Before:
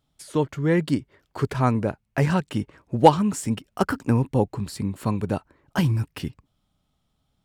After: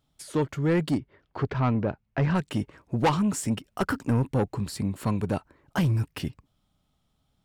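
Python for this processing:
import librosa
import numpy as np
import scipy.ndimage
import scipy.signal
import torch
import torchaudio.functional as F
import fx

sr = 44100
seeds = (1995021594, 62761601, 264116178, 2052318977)

y = 10.0 ** (-17.5 / 20.0) * np.tanh(x / 10.0 ** (-17.5 / 20.0))
y = fx.air_absorb(y, sr, metres=200.0, at=(0.97, 2.34), fade=0.02)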